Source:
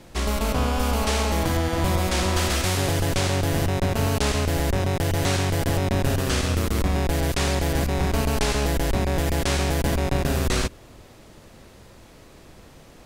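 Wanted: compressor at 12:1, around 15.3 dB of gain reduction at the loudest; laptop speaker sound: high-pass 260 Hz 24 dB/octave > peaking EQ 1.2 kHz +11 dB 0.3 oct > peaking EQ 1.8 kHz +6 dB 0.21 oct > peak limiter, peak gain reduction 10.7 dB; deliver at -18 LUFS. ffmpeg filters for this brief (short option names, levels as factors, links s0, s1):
-af "acompressor=threshold=0.02:ratio=12,highpass=f=260:w=0.5412,highpass=f=260:w=1.3066,equalizer=f=1200:t=o:w=0.3:g=11,equalizer=f=1800:t=o:w=0.21:g=6,volume=23.7,alimiter=limit=0.398:level=0:latency=1"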